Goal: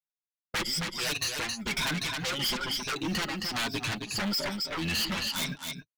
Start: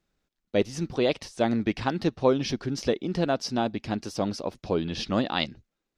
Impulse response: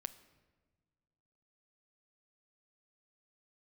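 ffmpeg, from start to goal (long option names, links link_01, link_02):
-filter_complex "[0:a]afftfilt=real='re*pow(10,22/40*sin(2*PI*(1.6*log(max(b,1)*sr/1024/100)/log(2)-(1.1)*(pts-256)/sr)))':imag='im*pow(10,22/40*sin(2*PI*(1.6*log(max(b,1)*sr/1024/100)/log(2)-(1.1)*(pts-256)/sr)))':win_size=1024:overlap=0.75,asplit=2[link_01][link_02];[link_02]aeval=exprs='0.668*sin(PI/2*8.91*val(0)/0.668)':channel_layout=same,volume=-9dB[link_03];[link_01][link_03]amix=inputs=2:normalize=0,flanger=delay=4.7:depth=2.8:regen=-10:speed=1.2:shape=sinusoidal,bandreject=frequency=132.7:width_type=h:width=4,bandreject=frequency=265.4:width_type=h:width=4,bandreject=frequency=398.1:width_type=h:width=4,agate=range=-50dB:threshold=-25dB:ratio=16:detection=peak,tremolo=f=1.6:d=0.96,lowshelf=frequency=290:gain=-10.5,acompressor=threshold=-30dB:ratio=2,equalizer=frequency=530:width=0.67:gain=-13,aecho=1:1:268:0.376,asoftclip=type=tanh:threshold=-34dB,acrusher=bits=8:mode=log:mix=0:aa=0.000001,volume=7.5dB"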